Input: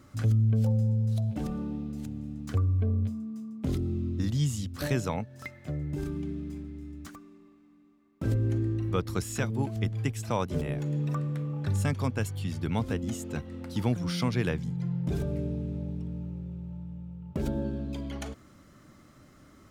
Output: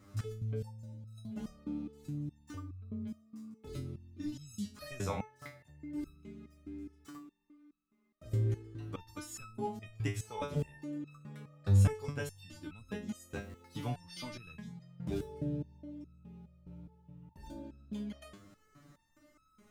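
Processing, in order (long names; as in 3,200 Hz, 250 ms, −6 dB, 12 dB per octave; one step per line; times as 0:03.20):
0:13.24–0:13.86: surface crackle 490 per second −50 dBFS
step-sequenced resonator 4.8 Hz 100–1,300 Hz
level +6 dB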